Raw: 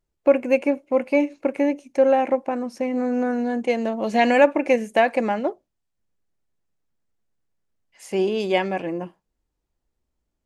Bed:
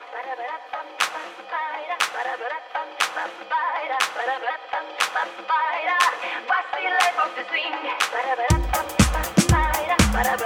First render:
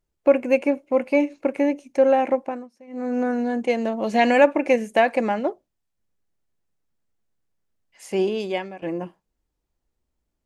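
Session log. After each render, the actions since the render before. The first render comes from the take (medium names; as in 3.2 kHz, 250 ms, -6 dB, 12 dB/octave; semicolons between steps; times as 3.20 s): 2.28–3.28 s: dip -22 dB, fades 0.41 s equal-power; 8.22–8.82 s: fade out, to -18 dB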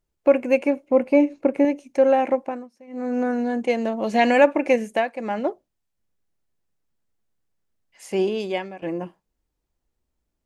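0.88–1.65 s: tilt shelf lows +4.5 dB; 4.87–5.41 s: dip -13 dB, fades 0.26 s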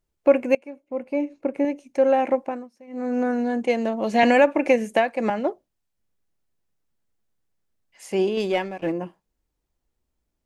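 0.55–2.38 s: fade in, from -23.5 dB; 4.23–5.30 s: three bands compressed up and down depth 70%; 8.37–8.92 s: waveshaping leveller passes 1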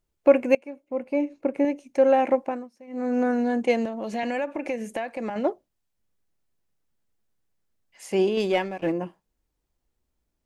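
3.85–5.36 s: compression 2.5:1, threshold -30 dBFS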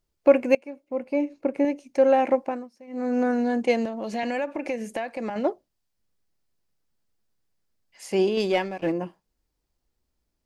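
peaking EQ 4.8 kHz +5 dB 0.45 oct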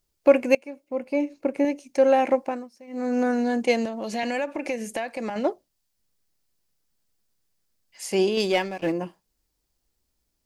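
treble shelf 3.5 kHz +8.5 dB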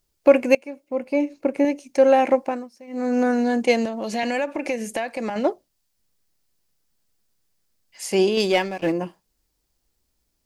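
trim +3 dB; peak limiter -2 dBFS, peak gain reduction 1 dB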